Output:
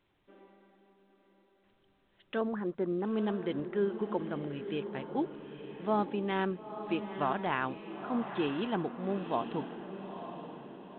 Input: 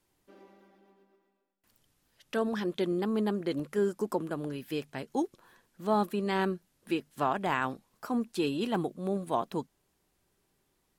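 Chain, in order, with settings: 2.41–3.05 s: low-pass 1.6 kHz 24 dB/octave; echo that smears into a reverb 914 ms, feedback 44%, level -9 dB; trim -2.5 dB; µ-law 64 kbps 8 kHz

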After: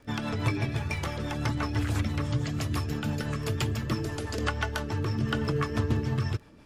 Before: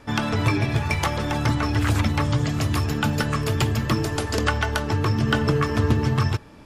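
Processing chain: crackle 11 per s -32 dBFS; rotary cabinet horn 6 Hz; trim -5.5 dB

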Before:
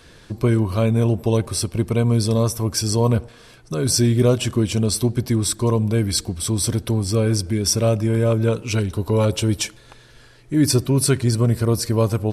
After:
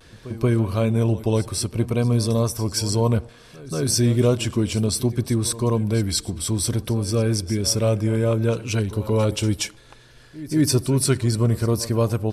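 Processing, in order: vibrato 0.6 Hz 36 cents; reverse echo 180 ms -16.5 dB; trim -2 dB

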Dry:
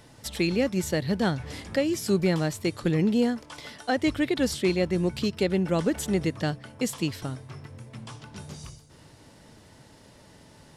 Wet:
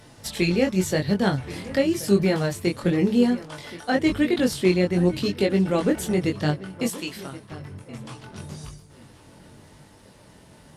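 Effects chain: chorus 0.91 Hz, delay 20 ms, depth 2.9 ms; 6.89–7.52 s: high-pass 810 Hz 6 dB/octave; filtered feedback delay 1076 ms, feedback 26%, low-pass 4.6 kHz, level -16.5 dB; trim +6.5 dB; Opus 48 kbps 48 kHz

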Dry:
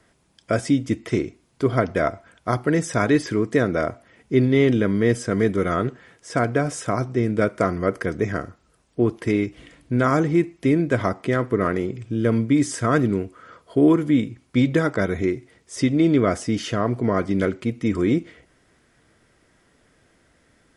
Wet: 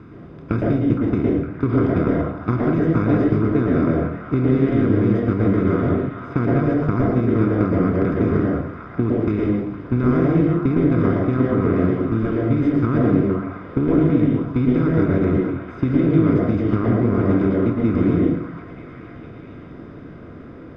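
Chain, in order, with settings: spectral levelling over time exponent 0.4; gate -16 dBFS, range -20 dB; bass shelf 270 Hz +11 dB; compression 4:1, threshold -23 dBFS, peak gain reduction 16.5 dB; distance through air 320 m; repeats whose band climbs or falls 462 ms, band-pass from 1.1 kHz, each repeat 0.7 oct, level -5 dB; reverberation RT60 0.55 s, pre-delay 109 ms, DRR -0.5 dB

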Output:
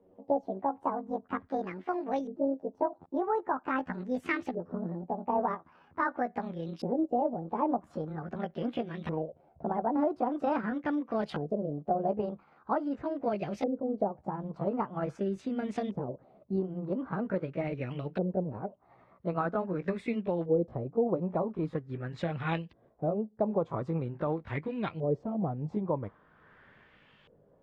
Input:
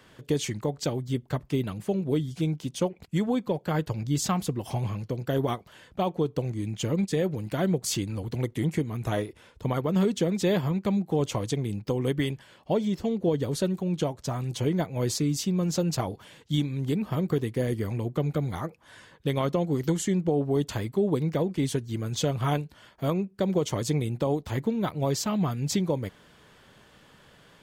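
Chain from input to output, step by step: pitch bend over the whole clip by +11 st ending unshifted; LFO low-pass saw up 0.44 Hz 460–3000 Hz; trim -5.5 dB

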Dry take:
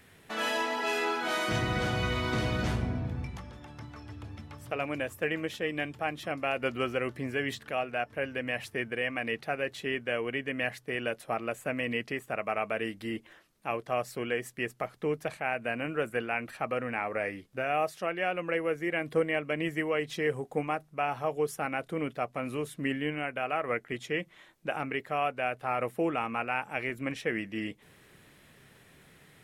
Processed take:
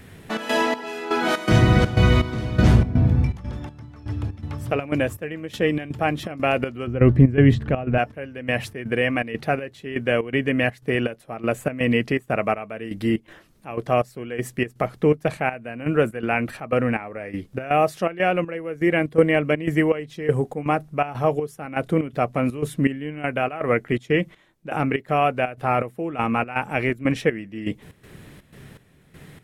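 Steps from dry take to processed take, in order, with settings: 6.87–7.98 s: RIAA curve playback; trance gate "xxx.xx...xx." 122 bpm -12 dB; bass shelf 400 Hz +10.5 dB; trim +7.5 dB

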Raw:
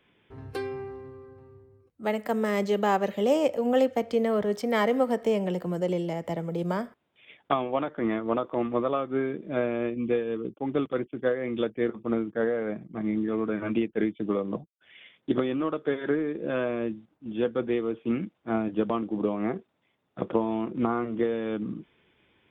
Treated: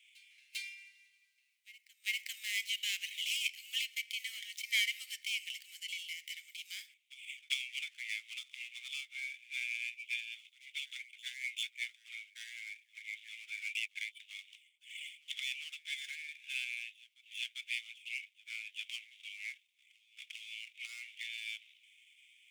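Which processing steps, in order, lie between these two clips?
median filter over 9 samples; Chebyshev high-pass 2.2 kHz, order 6; reverse echo 397 ms -20.5 dB; trim +9 dB

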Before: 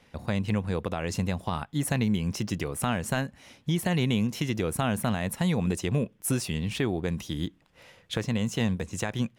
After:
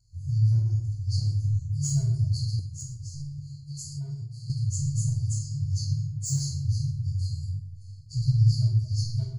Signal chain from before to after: frequency axis rescaled in octaves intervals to 90%; FFT band-reject 140–4100 Hz; overload inside the chain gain 28 dB; 5.97–6.35 s: spectral replace 300–3800 Hz both; 7.47–8.42 s: bass shelf 410 Hz +6.5 dB; reverberation RT60 0.85 s, pre-delay 15 ms, DRR -3.5 dB; 2.59–4.50 s: compression 6:1, threshold -32 dBFS, peak gain reduction 16 dB; rippled EQ curve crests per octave 1.8, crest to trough 8 dB; trim -2.5 dB

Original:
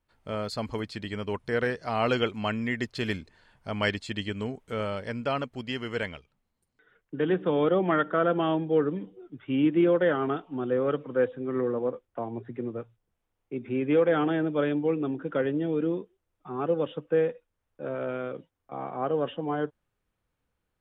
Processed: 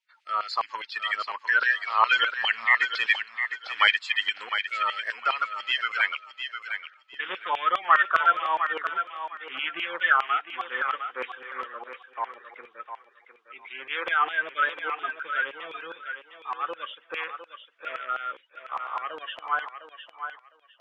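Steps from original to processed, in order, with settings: coarse spectral quantiser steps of 30 dB; low-pass 4.6 kHz; LFO high-pass saw down 4.9 Hz 960–2600 Hz; bass shelf 490 Hz -9 dB; thinning echo 706 ms, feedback 22%, high-pass 360 Hz, level -8 dB; trim +6.5 dB

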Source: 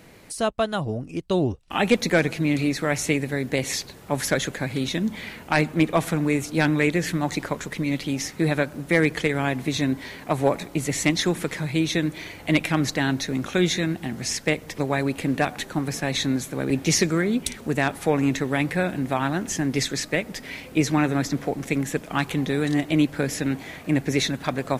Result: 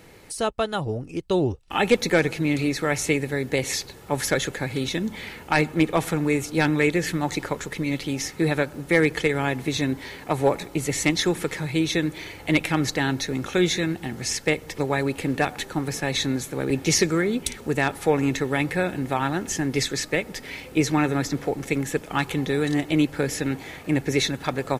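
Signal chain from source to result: comb 2.3 ms, depth 31%

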